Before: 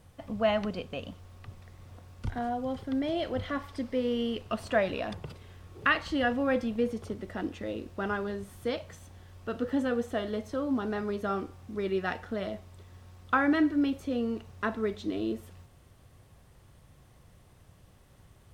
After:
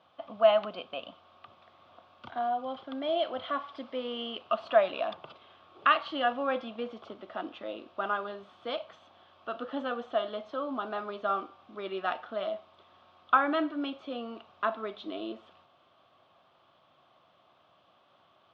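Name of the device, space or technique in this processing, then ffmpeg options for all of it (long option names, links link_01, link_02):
phone earpiece: -af "highpass=410,equalizer=frequency=450:width_type=q:width=4:gain=-8,equalizer=frequency=660:width_type=q:width=4:gain=7,equalizer=frequency=1200:width_type=q:width=4:gain=8,equalizer=frequency=1900:width_type=q:width=4:gain=-9,equalizer=frequency=3300:width_type=q:width=4:gain=6,lowpass=frequency=3800:width=0.5412,lowpass=frequency=3800:width=1.3066"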